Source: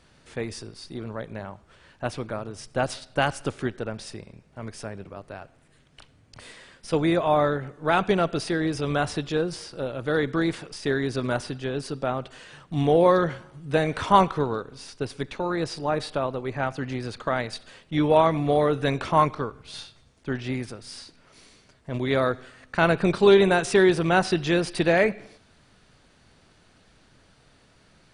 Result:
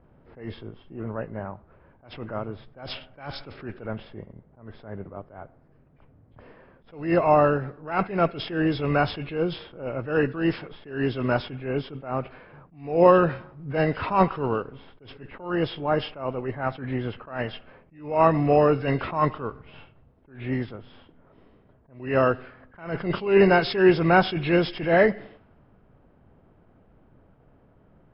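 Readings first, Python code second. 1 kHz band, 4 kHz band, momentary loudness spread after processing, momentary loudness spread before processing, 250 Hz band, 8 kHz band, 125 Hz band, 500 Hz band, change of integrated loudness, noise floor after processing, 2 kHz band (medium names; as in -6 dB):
-0.5 dB, -3.0 dB, 20 LU, 20 LU, 0.0 dB, under -40 dB, 0.0 dB, 0.0 dB, +0.5 dB, -58 dBFS, -1.0 dB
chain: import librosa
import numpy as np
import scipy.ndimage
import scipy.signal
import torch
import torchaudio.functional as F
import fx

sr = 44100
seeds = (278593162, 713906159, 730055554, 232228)

y = fx.freq_compress(x, sr, knee_hz=1500.0, ratio=1.5)
y = fx.env_lowpass(y, sr, base_hz=810.0, full_db=-19.0)
y = fx.attack_slew(y, sr, db_per_s=130.0)
y = F.gain(torch.from_numpy(y), 3.0).numpy()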